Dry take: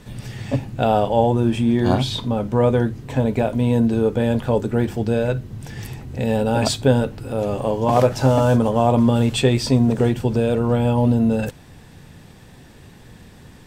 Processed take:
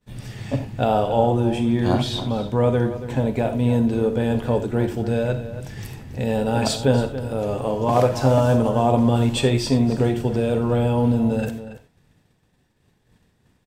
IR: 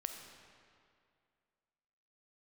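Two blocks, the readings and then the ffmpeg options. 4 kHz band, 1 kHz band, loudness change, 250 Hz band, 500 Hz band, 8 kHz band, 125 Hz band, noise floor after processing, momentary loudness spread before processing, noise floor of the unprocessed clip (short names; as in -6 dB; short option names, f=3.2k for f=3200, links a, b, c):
-1.5 dB, -1.5 dB, -2.0 dB, -2.0 dB, -1.5 dB, -2.0 dB, -1.5 dB, -64 dBFS, 9 LU, -45 dBFS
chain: -filter_complex "[0:a]agate=range=-33dB:threshold=-32dB:ratio=3:detection=peak,asplit=2[a][b];[b]adelay=279.9,volume=-12dB,highshelf=f=4k:g=-6.3[c];[a][c]amix=inputs=2:normalize=0[d];[1:a]atrim=start_sample=2205,atrim=end_sample=4410[e];[d][e]afir=irnorm=-1:irlink=0"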